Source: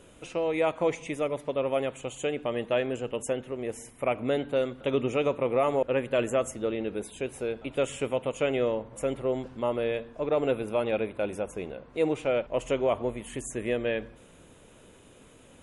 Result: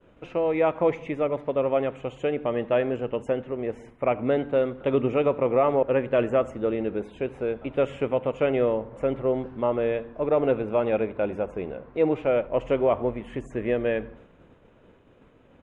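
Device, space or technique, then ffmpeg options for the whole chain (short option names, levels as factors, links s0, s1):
hearing-loss simulation: -filter_complex "[0:a]lowpass=2000,asplit=2[s0][s1];[s1]adelay=81,lowpass=f=2000:p=1,volume=0.0841,asplit=2[s2][s3];[s3]adelay=81,lowpass=f=2000:p=1,volume=0.54,asplit=2[s4][s5];[s5]adelay=81,lowpass=f=2000:p=1,volume=0.54,asplit=2[s6][s7];[s7]adelay=81,lowpass=f=2000:p=1,volume=0.54[s8];[s0][s2][s4][s6][s8]amix=inputs=5:normalize=0,agate=range=0.0224:threshold=0.00355:ratio=3:detection=peak,volume=1.58"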